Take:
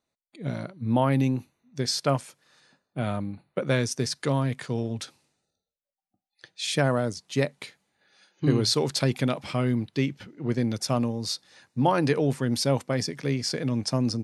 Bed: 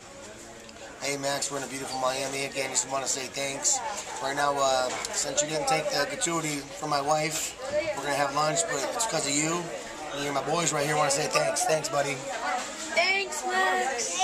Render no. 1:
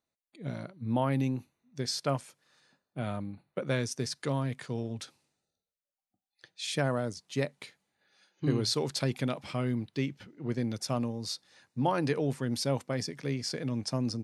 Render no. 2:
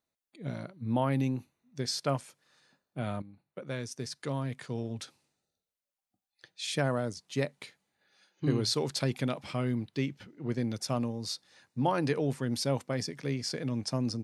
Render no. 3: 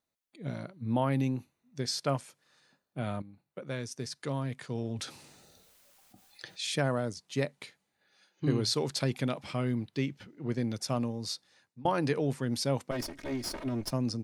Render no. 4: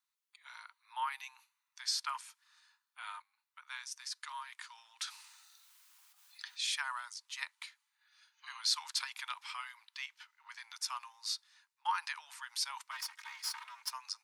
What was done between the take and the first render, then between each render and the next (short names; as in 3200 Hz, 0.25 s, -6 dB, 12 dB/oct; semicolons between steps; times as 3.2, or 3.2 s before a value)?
gain -6 dB
3.22–4.97 fade in, from -12.5 dB
4.75–6.76 fast leveller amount 50%; 11.31–11.85 fade out, to -22.5 dB; 12.91–13.91 minimum comb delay 3.2 ms
Chebyshev high-pass 910 Hz, order 6